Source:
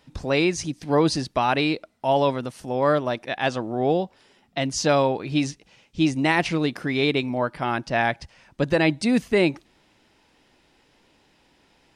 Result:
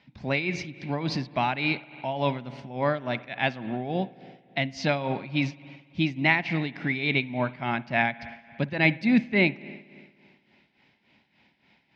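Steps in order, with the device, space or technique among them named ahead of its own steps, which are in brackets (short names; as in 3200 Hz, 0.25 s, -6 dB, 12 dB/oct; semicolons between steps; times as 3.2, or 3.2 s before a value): combo amplifier with spring reverb and tremolo (spring tank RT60 1.9 s, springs 56 ms, chirp 55 ms, DRR 13.5 dB; tremolo 3.5 Hz, depth 70%; speaker cabinet 93–4500 Hz, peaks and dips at 130 Hz +4 dB, 210 Hz +7 dB, 320 Hz -4 dB, 470 Hz -9 dB, 1200 Hz -6 dB, 2200 Hz +9 dB); gain -1.5 dB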